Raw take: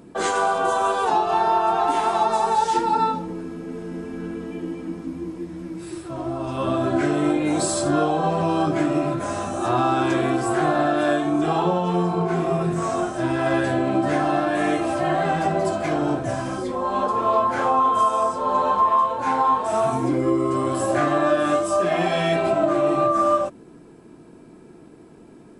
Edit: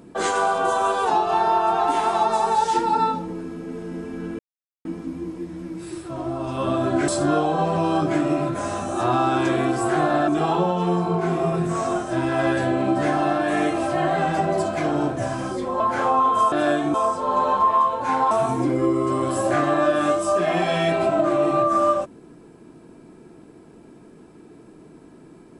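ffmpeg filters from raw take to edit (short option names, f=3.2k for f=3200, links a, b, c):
-filter_complex "[0:a]asplit=9[a][b][c][d][e][f][g][h][i];[a]atrim=end=4.39,asetpts=PTS-STARTPTS,afade=t=out:st=4.386:d=0.004:c=hsin[j];[b]atrim=start=4.39:end=4.85,asetpts=PTS-STARTPTS,volume=0[k];[c]atrim=start=4.85:end=7.082,asetpts=PTS-STARTPTS,afade=t=in:d=0.004:c=hsin[l];[d]atrim=start=7.728:end=10.932[m];[e]atrim=start=11.348:end=16.872[n];[f]atrim=start=17.398:end=18.122[o];[g]atrim=start=10.928:end=11.352[p];[h]atrim=start=18.118:end=19.492[q];[i]atrim=start=19.748[r];[j][k][l]concat=n=3:v=0:a=1[s];[s][m]acrossfade=d=0.004:c1=hsin:c2=hsin[t];[t][n]acrossfade=d=0.004:c1=hsin:c2=hsin[u];[u][o]acrossfade=d=0.004:c1=hsin:c2=hsin[v];[v][p]acrossfade=d=0.004:c1=hsin:c2=hsin[w];[w][q]acrossfade=d=0.004:c1=hsin:c2=hsin[x];[x][r]acrossfade=d=0.004:c1=hsin:c2=hsin"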